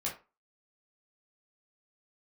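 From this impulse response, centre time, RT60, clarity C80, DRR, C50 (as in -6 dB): 23 ms, 0.30 s, 15.5 dB, -4.5 dB, 9.0 dB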